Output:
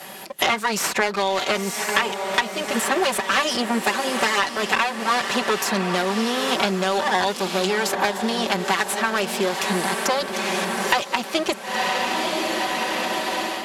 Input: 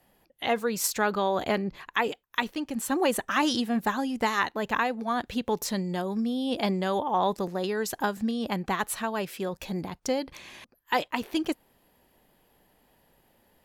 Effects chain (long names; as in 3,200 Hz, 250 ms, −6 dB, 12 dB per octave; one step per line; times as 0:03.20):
lower of the sound and its delayed copy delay 5.2 ms
low-shelf EQ 440 Hz −7.5 dB
on a send: feedback delay with all-pass diffusion 967 ms, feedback 53%, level −11 dB
on the sum: automatic gain control gain up to 10 dB
high-pass filter 150 Hz 12 dB per octave
high-shelf EQ 6,100 Hz +4 dB
in parallel at −9 dB: soft clipping −18.5 dBFS, distortion −9 dB
on the sum: low-pass filter 9,900 Hz 12 dB per octave
multiband upward and downward compressor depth 100%
level −2 dB